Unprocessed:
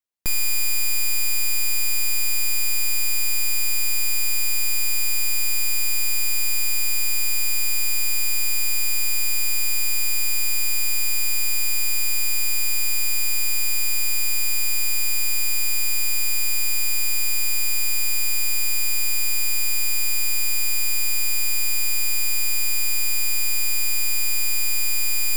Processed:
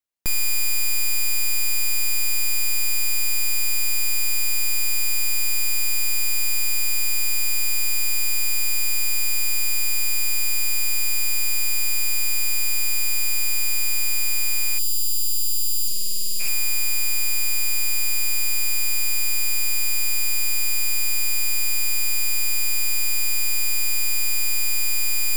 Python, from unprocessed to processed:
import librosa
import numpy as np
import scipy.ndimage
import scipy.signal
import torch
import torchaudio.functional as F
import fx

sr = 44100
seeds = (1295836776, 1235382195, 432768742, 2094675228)

y = fx.spec_box(x, sr, start_s=14.79, length_s=1.61, low_hz=370.0, high_hz=2600.0, gain_db=-30)
y = fx.doppler_dist(y, sr, depth_ms=0.4, at=(15.88, 16.48))